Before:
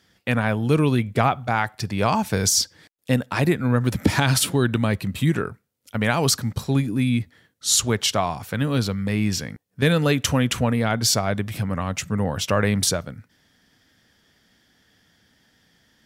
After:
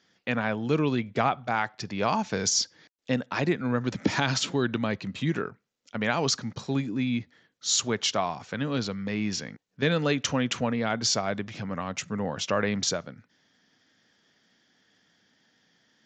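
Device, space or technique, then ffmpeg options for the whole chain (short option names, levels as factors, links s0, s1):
Bluetooth headset: -af "highpass=170,aresample=16000,aresample=44100,volume=0.596" -ar 16000 -c:a sbc -b:a 64k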